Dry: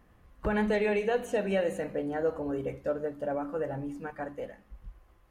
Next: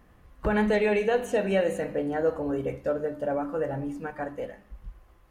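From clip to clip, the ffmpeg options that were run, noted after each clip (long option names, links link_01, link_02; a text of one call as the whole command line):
ffmpeg -i in.wav -af "bandreject=frequency=100.1:width_type=h:width=4,bandreject=frequency=200.2:width_type=h:width=4,bandreject=frequency=300.3:width_type=h:width=4,bandreject=frequency=400.4:width_type=h:width=4,bandreject=frequency=500.5:width_type=h:width=4,bandreject=frequency=600.6:width_type=h:width=4,bandreject=frequency=700.7:width_type=h:width=4,bandreject=frequency=800.8:width_type=h:width=4,bandreject=frequency=900.9:width_type=h:width=4,bandreject=frequency=1001:width_type=h:width=4,bandreject=frequency=1101.1:width_type=h:width=4,bandreject=frequency=1201.2:width_type=h:width=4,bandreject=frequency=1301.3:width_type=h:width=4,bandreject=frequency=1401.4:width_type=h:width=4,bandreject=frequency=1501.5:width_type=h:width=4,bandreject=frequency=1601.6:width_type=h:width=4,bandreject=frequency=1701.7:width_type=h:width=4,bandreject=frequency=1801.8:width_type=h:width=4,bandreject=frequency=1901.9:width_type=h:width=4,bandreject=frequency=2002:width_type=h:width=4,bandreject=frequency=2102.1:width_type=h:width=4,bandreject=frequency=2202.2:width_type=h:width=4,bandreject=frequency=2302.3:width_type=h:width=4,bandreject=frequency=2402.4:width_type=h:width=4,bandreject=frequency=2502.5:width_type=h:width=4,bandreject=frequency=2602.6:width_type=h:width=4,bandreject=frequency=2702.7:width_type=h:width=4,bandreject=frequency=2802.8:width_type=h:width=4,bandreject=frequency=2902.9:width_type=h:width=4,bandreject=frequency=3003:width_type=h:width=4,bandreject=frequency=3103.1:width_type=h:width=4,bandreject=frequency=3203.2:width_type=h:width=4,bandreject=frequency=3303.3:width_type=h:width=4,volume=4dB" out.wav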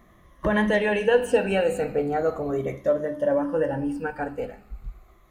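ffmpeg -i in.wav -af "afftfilt=real='re*pow(10,11/40*sin(2*PI*(1.2*log(max(b,1)*sr/1024/100)/log(2)-(-0.38)*(pts-256)/sr)))':imag='im*pow(10,11/40*sin(2*PI*(1.2*log(max(b,1)*sr/1024/100)/log(2)-(-0.38)*(pts-256)/sr)))':win_size=1024:overlap=0.75,volume=2.5dB" out.wav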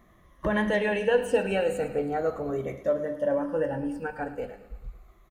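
ffmpeg -i in.wav -af "aecho=1:1:107|214|321|428|535:0.178|0.0925|0.0481|0.025|0.013,volume=-3.5dB" out.wav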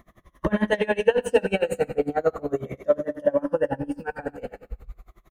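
ffmpeg -i in.wav -af "aeval=exprs='val(0)*pow(10,-26*(0.5-0.5*cos(2*PI*11*n/s))/20)':channel_layout=same,volume=8.5dB" out.wav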